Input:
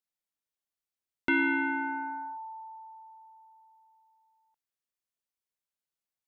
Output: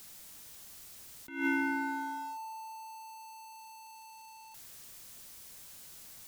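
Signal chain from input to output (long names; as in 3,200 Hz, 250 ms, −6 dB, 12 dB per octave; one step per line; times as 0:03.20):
converter with a step at zero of −43.5 dBFS
bass and treble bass +7 dB, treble +6 dB
level that may rise only so fast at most 120 dB per second
level −4 dB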